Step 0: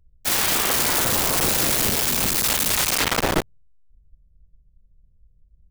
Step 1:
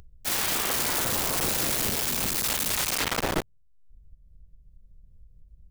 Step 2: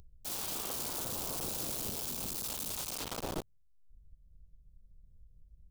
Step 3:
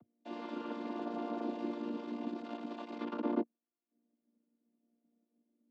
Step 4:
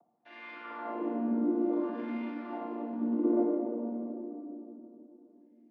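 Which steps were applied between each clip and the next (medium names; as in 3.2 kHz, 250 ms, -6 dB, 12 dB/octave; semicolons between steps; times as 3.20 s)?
upward compressor, threshold -33 dBFS; trim -6 dB
peaking EQ 1.9 kHz -11.5 dB 0.93 oct; peak limiter -22 dBFS, peak gain reduction 6.5 dB; trim -6 dB
vocoder on a held chord major triad, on A#3; distance through air 390 m; trim +5 dB
wah-wah 0.58 Hz 240–2200 Hz, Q 3.4; simulated room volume 160 m³, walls hard, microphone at 0.69 m; trim +7.5 dB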